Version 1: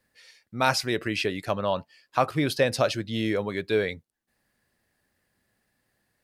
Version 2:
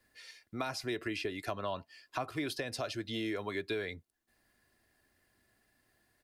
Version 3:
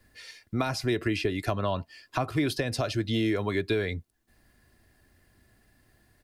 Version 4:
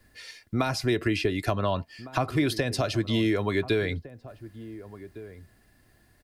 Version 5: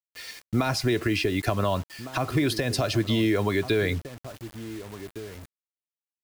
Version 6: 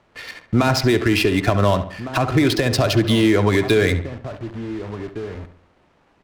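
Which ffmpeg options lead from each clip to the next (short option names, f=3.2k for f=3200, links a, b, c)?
-filter_complex "[0:a]alimiter=limit=-15dB:level=0:latency=1:release=237,acrossover=split=290|800[a][b][c];[a]acompressor=threshold=-44dB:ratio=4[d];[b]acompressor=threshold=-41dB:ratio=4[e];[c]acompressor=threshold=-40dB:ratio=4[f];[d][e][f]amix=inputs=3:normalize=0,aecho=1:1:2.9:0.4"
-af "lowshelf=f=210:g=12,volume=6dB"
-filter_complex "[0:a]asplit=2[a][b];[b]adelay=1458,volume=-16dB,highshelf=f=4k:g=-32.8[c];[a][c]amix=inputs=2:normalize=0,volume=2dB"
-af "alimiter=limit=-18dB:level=0:latency=1:release=108,acrusher=bits=7:mix=0:aa=0.000001,volume=3.5dB"
-filter_complex "[0:a]aeval=exprs='val(0)+0.5*0.00891*sgn(val(0))':c=same,adynamicsmooth=sensitivity=8:basefreq=1.1k,asplit=2[a][b];[b]adelay=69,lowpass=f=3.3k:p=1,volume=-11dB,asplit=2[c][d];[d]adelay=69,lowpass=f=3.3k:p=1,volume=0.43,asplit=2[e][f];[f]adelay=69,lowpass=f=3.3k:p=1,volume=0.43,asplit=2[g][h];[h]adelay=69,lowpass=f=3.3k:p=1,volume=0.43[i];[a][c][e][g][i]amix=inputs=5:normalize=0,volume=7dB"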